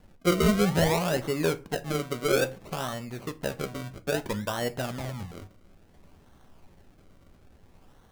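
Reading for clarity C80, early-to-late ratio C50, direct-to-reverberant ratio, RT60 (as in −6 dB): 25.0 dB, 19.0 dB, 9.0 dB, 0.40 s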